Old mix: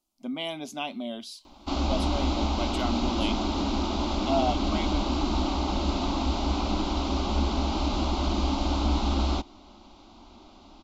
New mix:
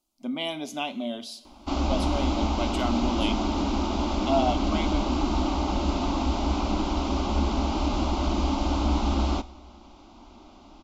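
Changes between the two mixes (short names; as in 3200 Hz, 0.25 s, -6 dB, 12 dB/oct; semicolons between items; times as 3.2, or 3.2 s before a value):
background: add bell 4000 Hz -5.5 dB 0.55 oct; reverb: on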